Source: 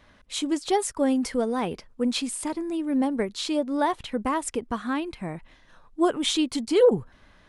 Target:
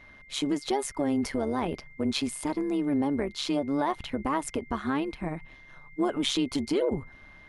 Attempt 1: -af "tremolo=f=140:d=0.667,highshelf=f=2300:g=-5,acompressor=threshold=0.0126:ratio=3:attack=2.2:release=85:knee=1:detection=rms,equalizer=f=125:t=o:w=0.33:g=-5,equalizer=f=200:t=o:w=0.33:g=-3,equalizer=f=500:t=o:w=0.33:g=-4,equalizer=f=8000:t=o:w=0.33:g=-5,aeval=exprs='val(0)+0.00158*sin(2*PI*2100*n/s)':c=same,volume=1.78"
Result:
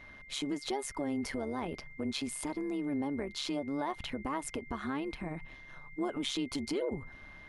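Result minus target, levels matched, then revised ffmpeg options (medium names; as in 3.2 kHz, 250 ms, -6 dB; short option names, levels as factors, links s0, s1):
compression: peak gain reduction +7.5 dB
-af "tremolo=f=140:d=0.667,highshelf=f=2300:g=-5,acompressor=threshold=0.0473:ratio=3:attack=2.2:release=85:knee=1:detection=rms,equalizer=f=125:t=o:w=0.33:g=-5,equalizer=f=200:t=o:w=0.33:g=-3,equalizer=f=500:t=o:w=0.33:g=-4,equalizer=f=8000:t=o:w=0.33:g=-5,aeval=exprs='val(0)+0.00158*sin(2*PI*2100*n/s)':c=same,volume=1.78"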